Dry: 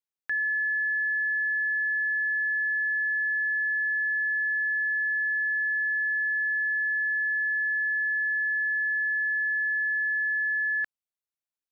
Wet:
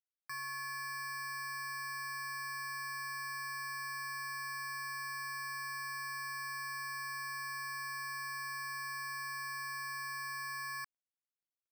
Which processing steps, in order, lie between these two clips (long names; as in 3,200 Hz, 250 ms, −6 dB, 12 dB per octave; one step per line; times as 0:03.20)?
running median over 25 samples
level +8 dB